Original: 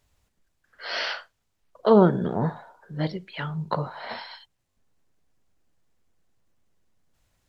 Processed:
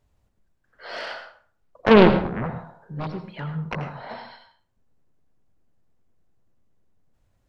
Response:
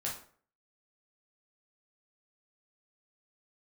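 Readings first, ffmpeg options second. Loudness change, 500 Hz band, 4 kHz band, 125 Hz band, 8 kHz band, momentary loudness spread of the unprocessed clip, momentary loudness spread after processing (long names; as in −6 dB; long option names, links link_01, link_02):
+3.5 dB, +3.0 dB, +1.0 dB, +0.5 dB, can't be measured, 20 LU, 24 LU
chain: -filter_complex "[0:a]tiltshelf=frequency=1400:gain=6,aeval=exprs='0.841*(cos(1*acos(clip(val(0)/0.841,-1,1)))-cos(1*PI/2))+0.237*(cos(7*acos(clip(val(0)/0.841,-1,1)))-cos(7*PI/2))':channel_layout=same,asplit=2[link_01][link_02];[1:a]atrim=start_sample=2205,adelay=84[link_03];[link_02][link_03]afir=irnorm=-1:irlink=0,volume=-10dB[link_04];[link_01][link_04]amix=inputs=2:normalize=0,volume=-3dB"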